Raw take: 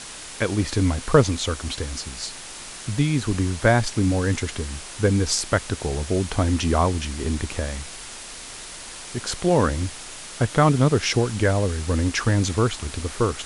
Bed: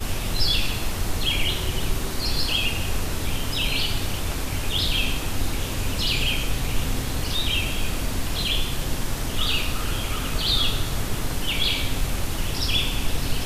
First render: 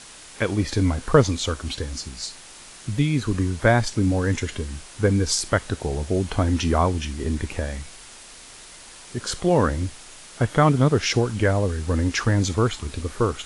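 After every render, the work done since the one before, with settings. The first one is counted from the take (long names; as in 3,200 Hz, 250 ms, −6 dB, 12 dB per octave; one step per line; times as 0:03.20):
noise reduction from a noise print 6 dB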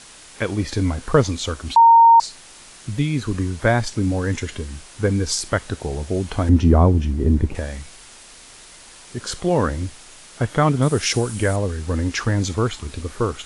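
0:01.76–0:02.20: beep over 922 Hz −6.5 dBFS
0:06.49–0:07.55: tilt shelving filter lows +9.5 dB, about 860 Hz
0:10.82–0:11.56: parametric band 9,500 Hz +13 dB 0.82 octaves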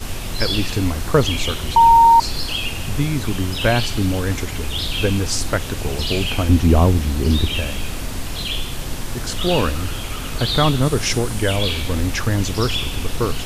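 mix in bed −0.5 dB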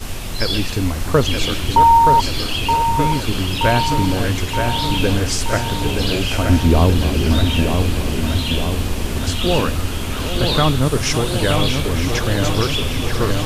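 feedback delay that plays each chunk backwards 496 ms, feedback 68%, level −11 dB
delay with a low-pass on its return 924 ms, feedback 61%, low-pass 3,700 Hz, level −5.5 dB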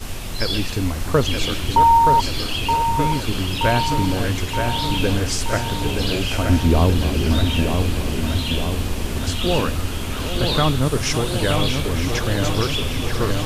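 level −2.5 dB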